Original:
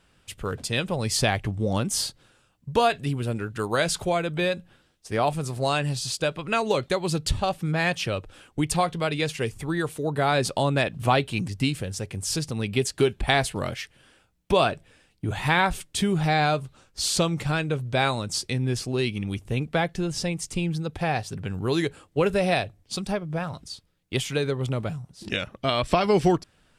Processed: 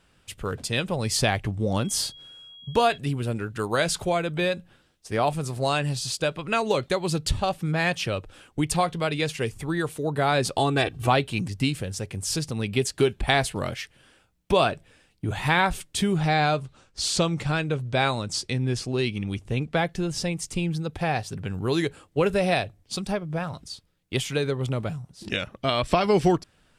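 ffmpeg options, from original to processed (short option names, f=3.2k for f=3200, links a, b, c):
-filter_complex "[0:a]asettb=1/sr,asplit=3[a][b][c];[a]atrim=end=1.784[d];[b]atrim=start=1.78:end=2.98,asetpts=PTS-STARTPTS,afade=t=in:d=0.004:c=qsin,afade=t=out:st=1.196:d=0.004:c=qsin,aeval=exprs='val(0)+0.00631*sin(2*PI*3300*n/s)':c=same[e];[c]atrim=start=2.976[f];[d][e]acrossfade=d=0.004:c1=hsin:c2=qsin[g];[g][f]acrossfade=d=0.004:c1=qsin:c2=hsin,asettb=1/sr,asplit=3[h][i][j];[h]atrim=end=10.574[k];[i]atrim=start=10.57:end=11.07,asetpts=PTS-STARTPTS,afade=t=in:d=0.004:c=qsin,afade=t=out:st=0.496:d=0.004:c=qsin,aecho=1:1:2.6:0.84,atrim=end_sample=22050[l];[j]atrim=start=11.066[m];[k][l]acrossfade=d=0.004:c1=hsin:c2=qsin[n];[n][m]acrossfade=d=0.004:c1=qsin:c2=hsin,asettb=1/sr,asplit=3[o][p][q];[o]atrim=end=16.164[r];[p]atrim=start=16.16:end=19.77,asetpts=PTS-STARTPTS,afade=t=in:d=0.004:c=qsin,afade=t=out:st=3.606:d=0.004:c=qsin,lowpass=9k[s];[q]atrim=start=19.766[t];[r][s]acrossfade=d=0.004:c1=hsin:c2=qsin[u];[u][t]acrossfade=d=0.004:c1=qsin:c2=hsin"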